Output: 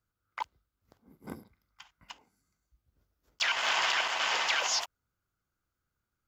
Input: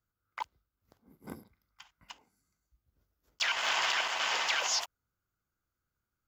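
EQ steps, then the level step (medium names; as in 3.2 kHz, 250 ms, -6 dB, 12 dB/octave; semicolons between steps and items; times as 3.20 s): treble shelf 7.9 kHz -4.5 dB; +2.0 dB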